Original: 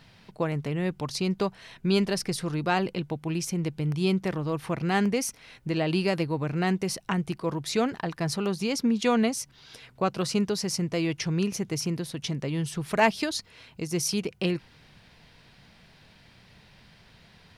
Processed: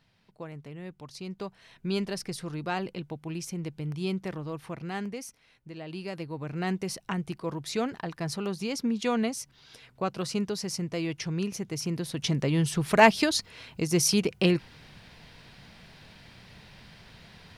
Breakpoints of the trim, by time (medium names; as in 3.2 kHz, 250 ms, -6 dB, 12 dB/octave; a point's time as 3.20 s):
1.09 s -13 dB
1.89 s -6 dB
4.37 s -6 dB
5.75 s -15 dB
6.69 s -4 dB
11.74 s -4 dB
12.33 s +4 dB